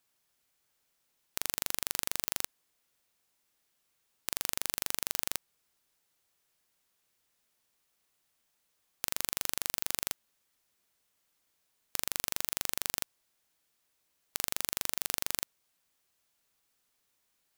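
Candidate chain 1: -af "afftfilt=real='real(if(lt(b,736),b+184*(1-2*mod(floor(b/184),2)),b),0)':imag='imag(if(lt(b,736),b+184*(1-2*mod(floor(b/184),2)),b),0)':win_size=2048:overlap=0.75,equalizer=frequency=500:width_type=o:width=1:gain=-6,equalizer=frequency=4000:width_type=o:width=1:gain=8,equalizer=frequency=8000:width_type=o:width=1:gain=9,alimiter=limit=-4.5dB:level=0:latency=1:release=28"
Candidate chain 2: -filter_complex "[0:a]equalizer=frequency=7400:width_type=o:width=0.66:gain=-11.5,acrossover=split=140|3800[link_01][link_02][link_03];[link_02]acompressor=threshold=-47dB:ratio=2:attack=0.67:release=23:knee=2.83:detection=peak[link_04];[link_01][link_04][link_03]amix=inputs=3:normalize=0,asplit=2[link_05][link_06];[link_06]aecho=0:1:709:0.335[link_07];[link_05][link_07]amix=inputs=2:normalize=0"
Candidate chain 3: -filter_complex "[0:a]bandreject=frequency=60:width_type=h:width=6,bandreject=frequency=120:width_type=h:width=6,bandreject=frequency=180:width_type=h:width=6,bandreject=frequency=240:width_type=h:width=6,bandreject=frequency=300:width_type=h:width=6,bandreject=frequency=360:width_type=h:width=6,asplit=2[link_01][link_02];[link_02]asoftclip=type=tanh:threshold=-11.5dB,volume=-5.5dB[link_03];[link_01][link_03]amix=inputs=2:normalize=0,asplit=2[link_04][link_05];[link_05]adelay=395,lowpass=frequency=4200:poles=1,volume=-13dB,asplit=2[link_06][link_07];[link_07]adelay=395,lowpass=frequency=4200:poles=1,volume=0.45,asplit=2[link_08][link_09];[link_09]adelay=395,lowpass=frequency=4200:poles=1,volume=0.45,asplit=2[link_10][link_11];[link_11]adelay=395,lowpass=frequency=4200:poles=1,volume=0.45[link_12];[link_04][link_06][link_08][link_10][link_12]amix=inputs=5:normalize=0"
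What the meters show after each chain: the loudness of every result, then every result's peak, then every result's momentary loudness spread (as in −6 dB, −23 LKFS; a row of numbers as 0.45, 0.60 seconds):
−29.0, −37.0, −32.0 LKFS; −4.5, −7.5, −1.5 dBFS; 9, 12, 19 LU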